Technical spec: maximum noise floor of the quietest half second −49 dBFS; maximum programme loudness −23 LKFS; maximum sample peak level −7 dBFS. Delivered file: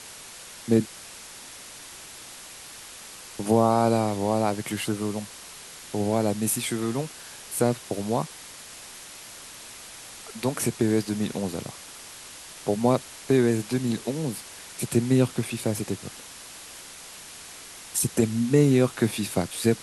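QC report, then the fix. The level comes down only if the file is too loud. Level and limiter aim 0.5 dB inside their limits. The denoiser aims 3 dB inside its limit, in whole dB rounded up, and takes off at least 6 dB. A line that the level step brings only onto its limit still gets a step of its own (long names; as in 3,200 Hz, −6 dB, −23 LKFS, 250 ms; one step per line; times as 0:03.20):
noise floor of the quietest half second −43 dBFS: out of spec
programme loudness −25.5 LKFS: in spec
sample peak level −8.0 dBFS: in spec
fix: broadband denoise 9 dB, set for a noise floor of −43 dBFS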